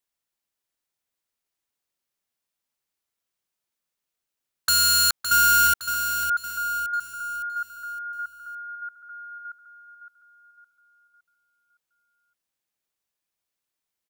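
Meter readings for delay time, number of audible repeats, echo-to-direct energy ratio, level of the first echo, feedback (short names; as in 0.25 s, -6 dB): 0.563 s, 4, -7.0 dB, -8.0 dB, 43%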